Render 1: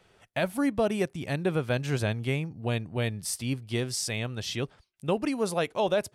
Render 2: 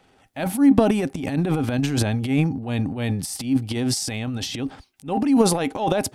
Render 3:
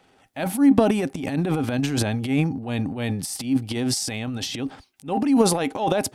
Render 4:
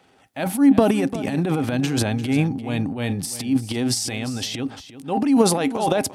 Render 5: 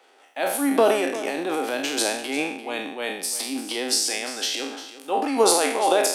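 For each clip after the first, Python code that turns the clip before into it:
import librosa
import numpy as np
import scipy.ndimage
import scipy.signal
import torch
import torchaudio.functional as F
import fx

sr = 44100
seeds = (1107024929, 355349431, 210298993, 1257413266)

y1 = fx.small_body(x, sr, hz=(270.0, 790.0), ring_ms=90, db=15)
y1 = fx.transient(y1, sr, attack_db=-9, sustain_db=11)
y1 = F.gain(torch.from_numpy(y1), 2.5).numpy()
y2 = fx.low_shelf(y1, sr, hz=100.0, db=-7.0)
y3 = scipy.signal.sosfilt(scipy.signal.butter(2, 49.0, 'highpass', fs=sr, output='sos'), y2)
y3 = y3 + 10.0 ** (-14.0 / 20.0) * np.pad(y3, (int(347 * sr / 1000.0), 0))[:len(y3)]
y3 = F.gain(torch.from_numpy(y3), 1.5).numpy()
y4 = fx.spec_trails(y3, sr, decay_s=0.66)
y4 = scipy.signal.sosfilt(scipy.signal.butter(4, 360.0, 'highpass', fs=sr, output='sos'), y4)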